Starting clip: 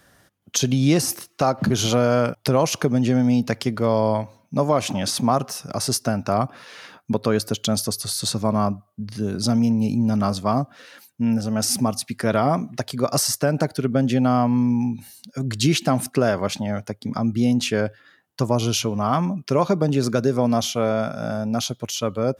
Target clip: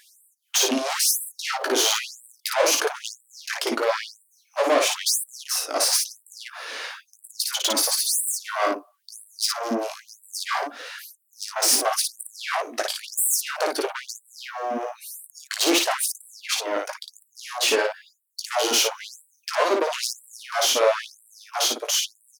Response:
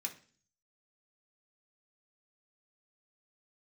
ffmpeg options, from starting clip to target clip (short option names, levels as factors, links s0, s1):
-af "aeval=exprs='(tanh(17.8*val(0)+0.55)-tanh(0.55))/17.8':c=same,aecho=1:1:18|56:0.447|0.668,afftfilt=real='re*gte(b*sr/1024,250*pow(7700/250,0.5+0.5*sin(2*PI*1*pts/sr)))':imag='im*gte(b*sr/1024,250*pow(7700/250,0.5+0.5*sin(2*PI*1*pts/sr)))':win_size=1024:overlap=0.75,volume=2.66"